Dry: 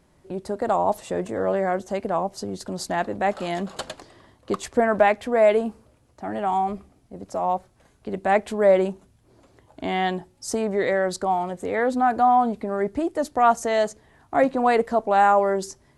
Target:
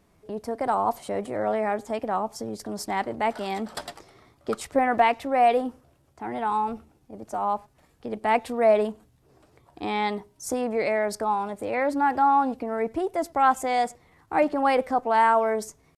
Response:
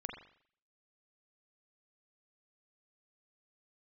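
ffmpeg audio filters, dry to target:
-filter_complex "[0:a]asetrate=49501,aresample=44100,atempo=0.890899,asplit=2[link_01][link_02];[link_02]adelay=100,highpass=300,lowpass=3400,asoftclip=type=hard:threshold=-16dB,volume=-27dB[link_03];[link_01][link_03]amix=inputs=2:normalize=0,volume=-2.5dB"

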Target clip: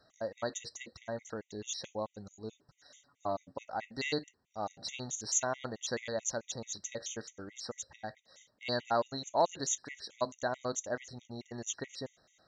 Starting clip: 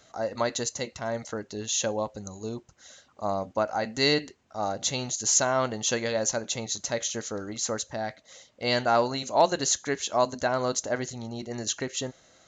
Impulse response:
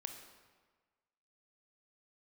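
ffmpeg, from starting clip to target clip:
-filter_complex "[0:a]asettb=1/sr,asplit=3[link_01][link_02][link_03];[link_01]atrim=end=2.544[link_04];[link_02]atrim=start=2.54:end=3.65,asetpts=PTS-STARTPTS,afade=type=in:duration=0.004:curve=qsin,afade=type=out:start_time=1.106:duration=0.004:curve=qsin,aecho=1:1:7:0.63,atrim=end_sample=48951[link_05];[link_03]atrim=start=3.646[link_06];[link_04][link_05]acrossfade=duration=0.004:curve1=hsin:curve2=qsin[link_07];[link_07][link_06]acrossfade=duration=0.004:curve1=qsin:curve2=hsin,afftfilt=real='re*gt(sin(2*PI*4.6*pts/sr)*(1-2*mod(floor(b*sr/1024/1900),2)),0)':imag='im*gt(sin(2*PI*4.6*pts/sr)*(1-2*mod(floor(b*sr/1024/1900),2)),0)':win_size=1024:overlap=0.75,volume=-7dB"

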